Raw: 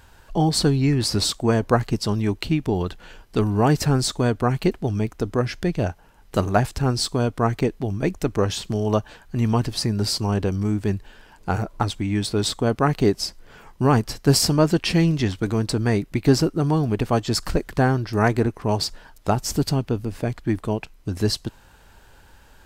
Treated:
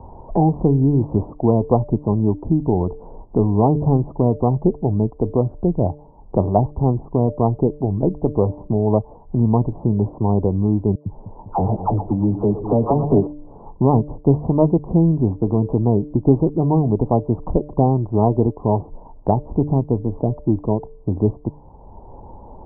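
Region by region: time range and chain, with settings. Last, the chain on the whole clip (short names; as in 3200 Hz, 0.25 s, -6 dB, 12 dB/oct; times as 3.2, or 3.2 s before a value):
10.95–13.27 dispersion lows, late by 0.107 s, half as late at 1100 Hz + split-band echo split 370 Hz, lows 0.199 s, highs 0.117 s, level -11.5 dB + Doppler distortion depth 0.22 ms
whole clip: steep low-pass 1000 Hz 72 dB/oct; de-hum 148.2 Hz, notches 4; three-band squash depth 40%; gain +4 dB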